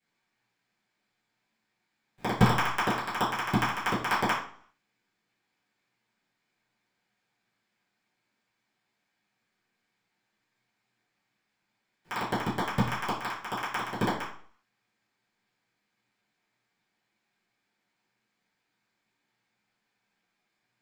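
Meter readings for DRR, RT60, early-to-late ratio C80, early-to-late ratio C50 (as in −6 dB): −13.0 dB, 0.50 s, 9.5 dB, 5.5 dB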